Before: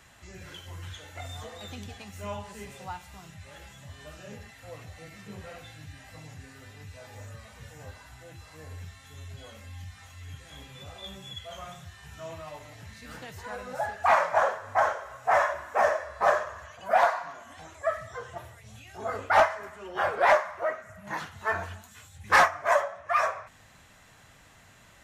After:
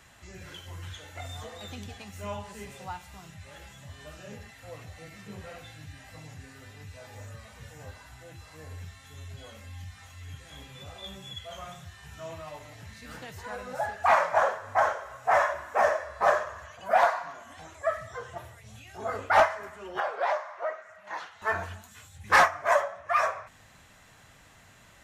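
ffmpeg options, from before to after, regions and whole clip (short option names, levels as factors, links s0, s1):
-filter_complex "[0:a]asettb=1/sr,asplit=3[s0][s1][s2];[s0]atrim=end=20.004[s3];[s1]atrim=start=20:end=21.42,asetpts=PTS-STARTPTS,afade=t=in:d=0.004:c=qsin,afade=t=out:st=1.416:d=0.004:c=qsin,acrossover=split=450 6100:gain=0.0708 1 0.158[s4][s5][s6];[s4][s5][s6]amix=inputs=3:normalize=0,acrossover=split=540|1100|3600[s7][s8][s9][s10];[s7]acompressor=threshold=0.0141:ratio=3[s11];[s8]acompressor=threshold=0.0355:ratio=3[s12];[s9]acompressor=threshold=0.00794:ratio=3[s13];[s10]acompressor=threshold=0.00398:ratio=3[s14];[s11][s12][s13][s14]amix=inputs=4:normalize=0[s15];[s2]atrim=start=21.416[s16];[s3][s15]acrossfade=d=0.004:c1=hsin:c2=qsin[s17];[s17][s16]acrossfade=d=0.004:c1=qsin:c2=hsin"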